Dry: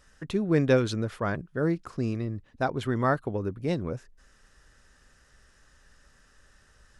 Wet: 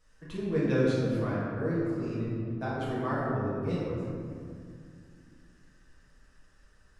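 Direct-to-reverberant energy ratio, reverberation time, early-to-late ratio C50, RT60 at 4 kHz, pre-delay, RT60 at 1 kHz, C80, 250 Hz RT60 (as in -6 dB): -9.0 dB, 2.3 s, -2.5 dB, 1.2 s, 4 ms, 2.1 s, -0.5 dB, 3.3 s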